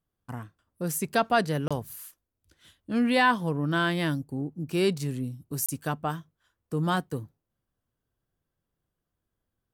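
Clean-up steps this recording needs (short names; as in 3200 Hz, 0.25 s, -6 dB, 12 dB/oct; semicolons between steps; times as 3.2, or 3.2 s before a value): interpolate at 1.68/5.66, 26 ms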